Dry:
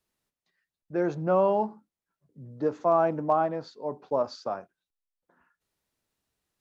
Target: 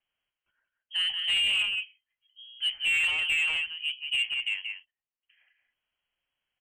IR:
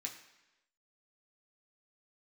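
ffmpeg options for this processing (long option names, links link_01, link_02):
-filter_complex "[0:a]asplit=2[link_01][link_02];[link_02]adynamicsmooth=sensitivity=5:basefreq=1900,volume=0dB[link_03];[link_01][link_03]amix=inputs=2:normalize=0,aeval=exprs='0.531*(cos(1*acos(clip(val(0)/0.531,-1,1)))-cos(1*PI/2))+0.00376*(cos(6*acos(clip(val(0)/0.531,-1,1)))-cos(6*PI/2))+0.00944*(cos(7*acos(clip(val(0)/0.531,-1,1)))-cos(7*PI/2))':channel_layout=same,highpass=150,equalizer=frequency=230:width_type=o:width=0.27:gain=-11.5,asplit=2[link_04][link_05];[link_05]adelay=180,highpass=300,lowpass=3400,asoftclip=type=hard:threshold=-13dB,volume=-7dB[link_06];[link_04][link_06]amix=inputs=2:normalize=0,acrossover=split=240|1300[link_07][link_08][link_09];[link_07]acompressor=threshold=-43dB:ratio=6[link_10];[link_10][link_08][link_09]amix=inputs=3:normalize=0,lowpass=frequency=2900:width_type=q:width=0.5098,lowpass=frequency=2900:width_type=q:width=0.6013,lowpass=frequency=2900:width_type=q:width=0.9,lowpass=frequency=2900:width_type=q:width=2.563,afreqshift=-3400,asoftclip=type=tanh:threshold=-20dB,aemphasis=mode=reproduction:type=bsi"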